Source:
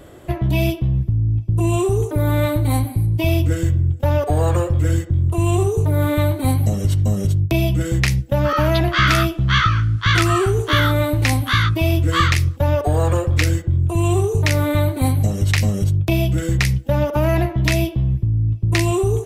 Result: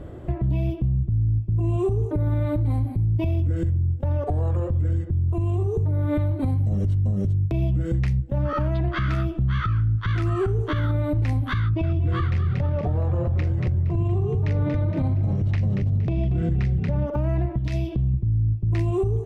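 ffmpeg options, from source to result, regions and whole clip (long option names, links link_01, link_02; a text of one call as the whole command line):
ffmpeg -i in.wav -filter_complex "[0:a]asettb=1/sr,asplit=3[link_01][link_02][link_03];[link_01]atrim=end=11.604[link_04];[link_02]atrim=start=11.6:end=17.07,asetpts=PTS-STARTPTS,afade=type=in:duration=0.004:curve=qsin,afade=type=out:start_time=5.466:duration=0.004:curve=qsin,lowpass=5300,asplit=6[link_05][link_06][link_07][link_08][link_09][link_10];[link_06]adelay=233,afreqshift=35,volume=-9dB[link_11];[link_07]adelay=466,afreqshift=70,volume=-15.6dB[link_12];[link_08]adelay=699,afreqshift=105,volume=-22.1dB[link_13];[link_09]adelay=932,afreqshift=140,volume=-28.7dB[link_14];[link_10]adelay=1165,afreqshift=175,volume=-35.2dB[link_15];[link_05][link_11][link_12][link_13][link_14][link_15]amix=inputs=6:normalize=0,atrim=end_sample=241227[link_16];[link_03]atrim=start=17.066[link_17];[link_04][link_16]acrossfade=duration=0.004:curve1=hsin:curve2=qsin[link_18];[link_18][link_17]acrossfade=duration=0.004:curve1=qsin:curve2=hsin,asettb=1/sr,asplit=3[link_19][link_20][link_21];[link_19]atrim=end=17.584[link_22];[link_20]atrim=start=17.58:end=18.14,asetpts=PTS-STARTPTS,afade=type=in:duration=0.004:curve=qsin,afade=type=out:start_time=0.556:duration=0.004:curve=qsin,equalizer=frequency=4900:width_type=o:width=1.9:gain=9.5,acompressor=threshold=-25dB:ratio=6:attack=3.2:release=140:knee=1:detection=peak[link_23];[link_21]atrim=start=18.136[link_24];[link_22][link_23]acrossfade=duration=0.004:curve1=hsin:curve2=qsin[link_25];[link_25][link_24]acrossfade=duration=0.004:curve1=qsin:curve2=hsin,lowpass=frequency=1100:poles=1,lowshelf=frequency=200:gain=10,alimiter=limit=-16dB:level=0:latency=1:release=160" out.wav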